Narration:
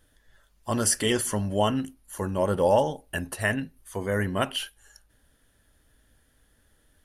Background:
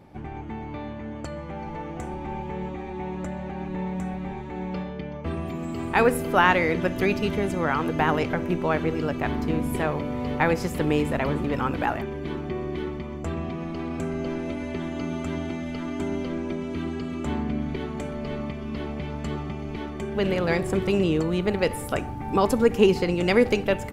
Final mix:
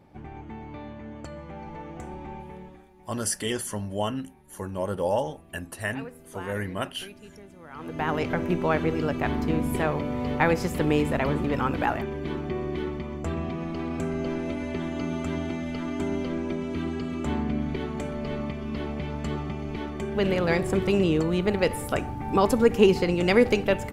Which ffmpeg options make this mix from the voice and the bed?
ffmpeg -i stem1.wav -i stem2.wav -filter_complex "[0:a]adelay=2400,volume=-4.5dB[link_01];[1:a]volume=17dB,afade=type=out:start_time=2.21:duration=0.68:silence=0.141254,afade=type=in:start_time=7.7:duration=0.7:silence=0.0794328[link_02];[link_01][link_02]amix=inputs=2:normalize=0" out.wav

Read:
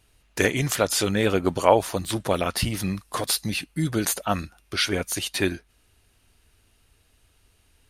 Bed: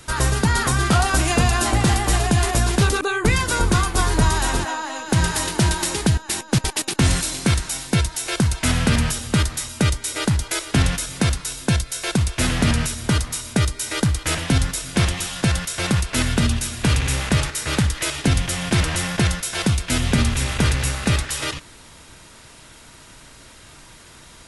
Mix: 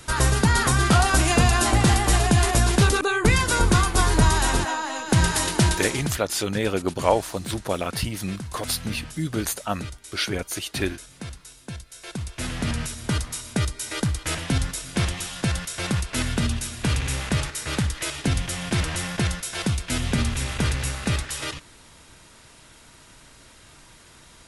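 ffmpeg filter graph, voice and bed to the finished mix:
ffmpeg -i stem1.wav -i stem2.wav -filter_complex "[0:a]adelay=5400,volume=-2.5dB[link_01];[1:a]volume=11.5dB,afade=type=out:start_time=5.59:duration=0.61:silence=0.149624,afade=type=in:start_time=11.87:duration=1.35:silence=0.251189[link_02];[link_01][link_02]amix=inputs=2:normalize=0" out.wav

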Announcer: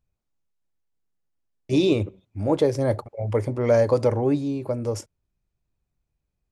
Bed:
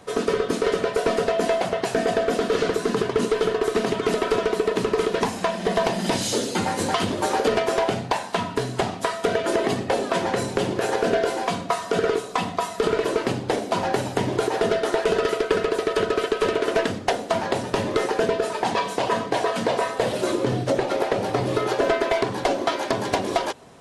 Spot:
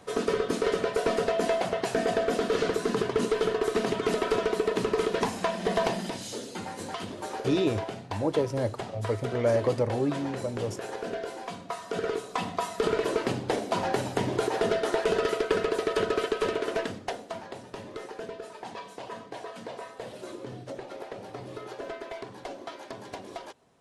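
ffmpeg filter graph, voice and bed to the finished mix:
ffmpeg -i stem1.wav -i stem2.wav -filter_complex "[0:a]adelay=5750,volume=-6dB[link_01];[1:a]volume=4dB,afade=type=out:start_time=5.92:duration=0.2:silence=0.375837,afade=type=in:start_time=11.59:duration=1.13:silence=0.375837,afade=type=out:start_time=16.19:duration=1.29:silence=0.237137[link_02];[link_01][link_02]amix=inputs=2:normalize=0" out.wav

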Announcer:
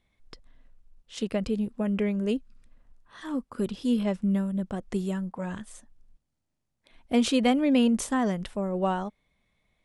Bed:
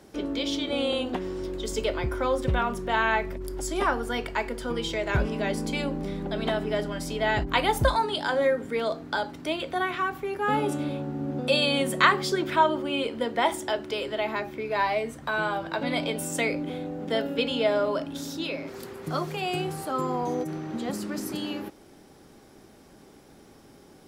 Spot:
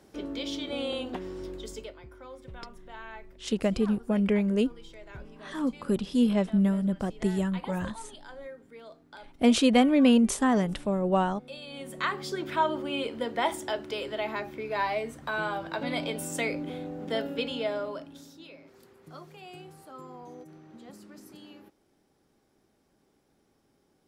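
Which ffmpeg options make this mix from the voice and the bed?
ffmpeg -i stem1.wav -i stem2.wav -filter_complex "[0:a]adelay=2300,volume=2dB[link_01];[1:a]volume=11dB,afade=type=out:start_time=1.5:duration=0.45:silence=0.188365,afade=type=in:start_time=11.66:duration=1.14:silence=0.149624,afade=type=out:start_time=17.2:duration=1.14:silence=0.211349[link_02];[link_01][link_02]amix=inputs=2:normalize=0" out.wav

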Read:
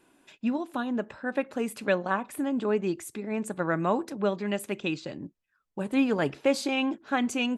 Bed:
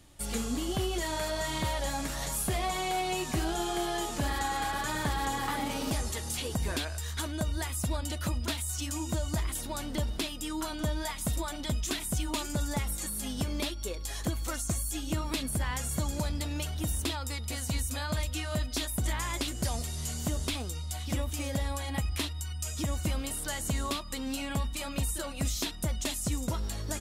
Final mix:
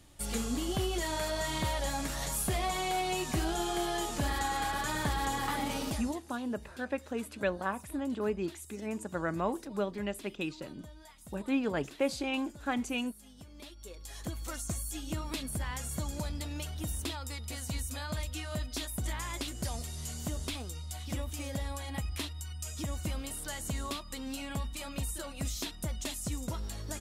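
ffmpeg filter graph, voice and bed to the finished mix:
ffmpeg -i stem1.wav -i stem2.wav -filter_complex "[0:a]adelay=5550,volume=-6dB[link_01];[1:a]volume=14dB,afade=type=out:start_time=5.77:duration=0.44:silence=0.11885,afade=type=in:start_time=13.53:duration=1.06:silence=0.177828[link_02];[link_01][link_02]amix=inputs=2:normalize=0" out.wav

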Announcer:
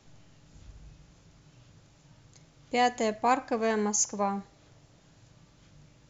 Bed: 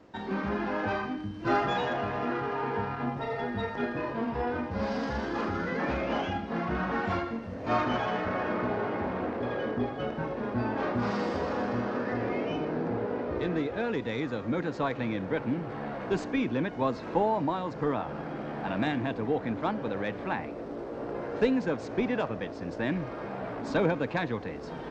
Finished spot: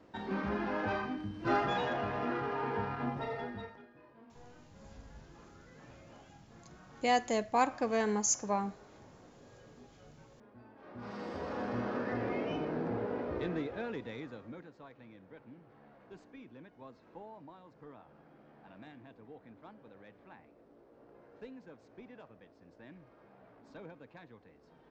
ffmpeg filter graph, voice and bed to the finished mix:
ffmpeg -i stem1.wav -i stem2.wav -filter_complex "[0:a]adelay=4300,volume=-3.5dB[link_01];[1:a]volume=18dB,afade=type=out:start_time=3.21:duration=0.62:silence=0.0749894,afade=type=in:start_time=10.82:duration=1.06:silence=0.0794328,afade=type=out:start_time=13.23:duration=1.5:silence=0.112202[link_02];[link_01][link_02]amix=inputs=2:normalize=0" out.wav

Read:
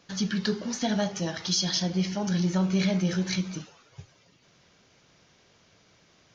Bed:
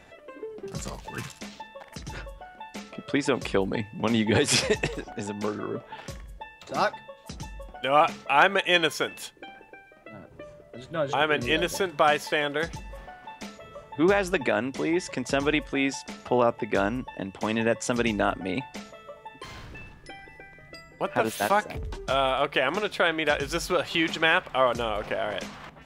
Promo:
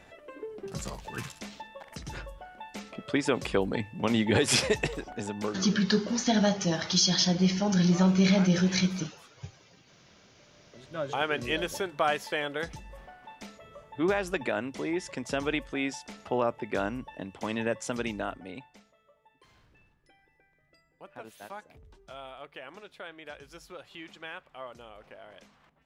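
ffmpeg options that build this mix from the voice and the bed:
ffmpeg -i stem1.wav -i stem2.wav -filter_complex "[0:a]adelay=5450,volume=2.5dB[link_01];[1:a]volume=15dB,afade=type=out:start_time=5.41:duration=0.52:silence=0.0944061,afade=type=in:start_time=10.45:duration=0.6:silence=0.141254,afade=type=out:start_time=17.76:duration=1.1:silence=0.188365[link_02];[link_01][link_02]amix=inputs=2:normalize=0" out.wav

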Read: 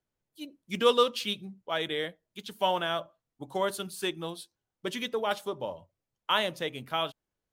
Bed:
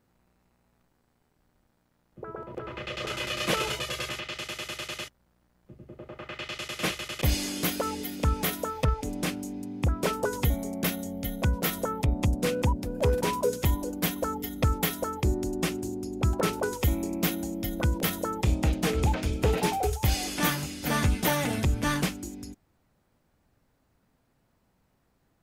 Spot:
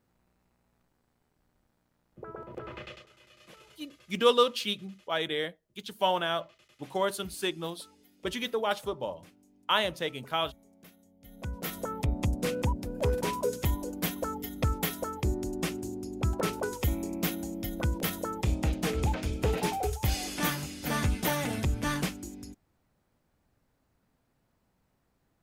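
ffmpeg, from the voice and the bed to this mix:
ffmpeg -i stem1.wav -i stem2.wav -filter_complex "[0:a]adelay=3400,volume=0.5dB[link_01];[1:a]volume=20dB,afade=type=out:start_time=2.74:duration=0.31:silence=0.0668344,afade=type=in:start_time=11.2:duration=0.8:silence=0.0668344[link_02];[link_01][link_02]amix=inputs=2:normalize=0" out.wav

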